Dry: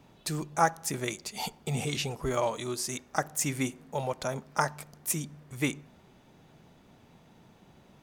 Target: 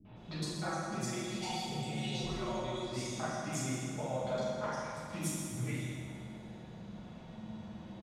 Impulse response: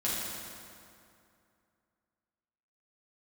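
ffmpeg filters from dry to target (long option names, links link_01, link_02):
-filter_complex "[0:a]lowpass=9200,equalizer=frequency=3500:width=0.84:gain=10,asettb=1/sr,asplit=3[link_01][link_02][link_03];[link_01]atrim=end=0.504[link_04];[link_02]atrim=start=0.5:end=2.78,asetpts=PTS-STARTPTS,afade=type=in:duration=0.004:curve=qsin,afade=type=out:start_time=2.276:duration=0.004:curve=qsin,aecho=1:1:5.4:0.85,atrim=end_sample=100548[link_05];[link_03]atrim=start=2.776[link_06];[link_04][link_05]acrossfade=duration=0.004:curve1=hsin:curve2=qsin[link_07];[link_07][link_06]acrossfade=duration=0.004:curve1=qsin:curve2=hsin,tiltshelf=frequency=1100:gain=6,acompressor=threshold=-36dB:ratio=6,flanger=delay=6.5:depth=3.4:regen=-53:speed=0.58:shape=triangular,acrossover=split=340|3500[link_08][link_09][link_10];[link_09]adelay=50[link_11];[link_10]adelay=160[link_12];[link_08][link_11][link_12]amix=inputs=3:normalize=0[link_13];[1:a]atrim=start_sample=2205[link_14];[link_13][link_14]afir=irnorm=-1:irlink=0"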